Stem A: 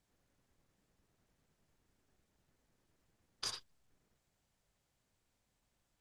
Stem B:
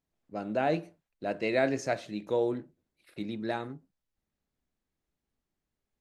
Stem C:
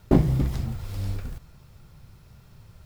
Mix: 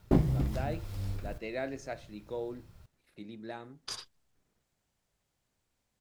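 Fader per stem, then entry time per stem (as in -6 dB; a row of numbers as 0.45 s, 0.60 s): +0.5 dB, -9.5 dB, -6.5 dB; 0.45 s, 0.00 s, 0.00 s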